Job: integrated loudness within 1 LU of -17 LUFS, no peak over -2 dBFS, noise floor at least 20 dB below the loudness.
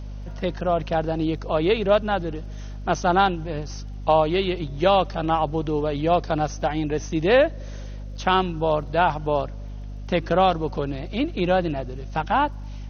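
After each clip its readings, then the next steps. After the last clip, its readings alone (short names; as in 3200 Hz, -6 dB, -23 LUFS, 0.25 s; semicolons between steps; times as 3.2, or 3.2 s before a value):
ticks 25/s; hum 50 Hz; harmonics up to 250 Hz; hum level -31 dBFS; loudness -23.0 LUFS; peak -5.5 dBFS; loudness target -17.0 LUFS
-> de-click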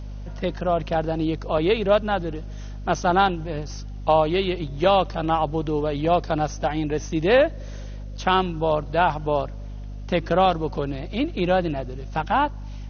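ticks 0/s; hum 50 Hz; harmonics up to 250 Hz; hum level -31 dBFS
-> de-hum 50 Hz, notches 5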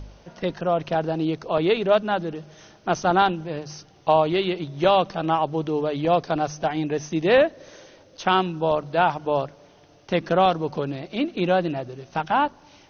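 hum none; loudness -23.0 LUFS; peak -6.0 dBFS; loudness target -17.0 LUFS
-> gain +6 dB; limiter -2 dBFS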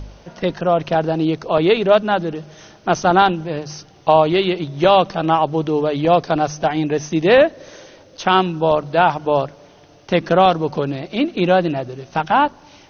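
loudness -17.5 LUFS; peak -2.0 dBFS; noise floor -47 dBFS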